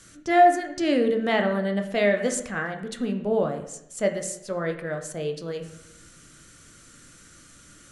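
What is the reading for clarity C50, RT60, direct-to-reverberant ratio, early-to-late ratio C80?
9.0 dB, 0.85 s, 4.5 dB, 12.0 dB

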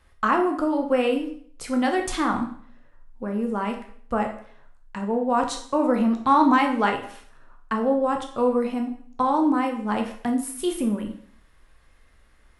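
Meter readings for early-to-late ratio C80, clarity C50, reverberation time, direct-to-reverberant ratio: 12.5 dB, 8.5 dB, 0.55 s, 3.0 dB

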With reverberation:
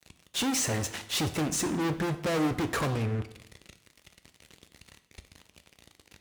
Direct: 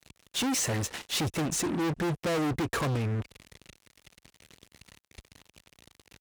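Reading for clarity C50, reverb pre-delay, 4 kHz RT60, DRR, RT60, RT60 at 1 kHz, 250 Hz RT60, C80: 13.0 dB, 6 ms, 0.60 s, 9.0 dB, 0.70 s, 0.70 s, 0.75 s, 15.5 dB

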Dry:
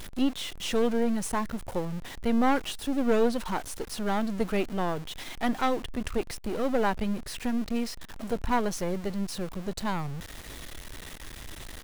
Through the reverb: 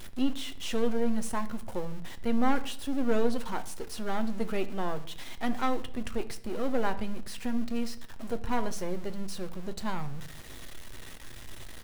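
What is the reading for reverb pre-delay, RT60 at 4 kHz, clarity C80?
8 ms, 0.50 s, 19.0 dB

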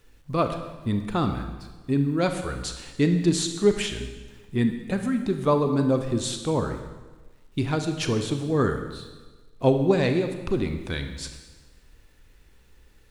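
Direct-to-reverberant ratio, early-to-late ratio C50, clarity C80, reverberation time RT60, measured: 6.5 dB, 7.5 dB, 9.5 dB, 1.3 s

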